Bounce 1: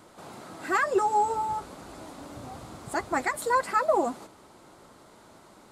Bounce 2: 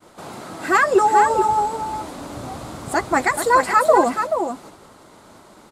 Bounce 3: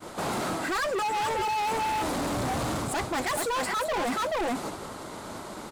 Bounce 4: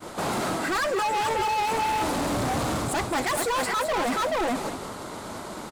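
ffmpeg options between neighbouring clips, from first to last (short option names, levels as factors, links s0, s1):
-af "agate=range=0.0224:threshold=0.00355:ratio=3:detection=peak,aecho=1:1:431:0.447,volume=2.82"
-af "areverse,acompressor=threshold=0.0631:ratio=12,areverse,asoftclip=type=hard:threshold=0.02,volume=2.37"
-af "aecho=1:1:211:0.266,volume=1.33"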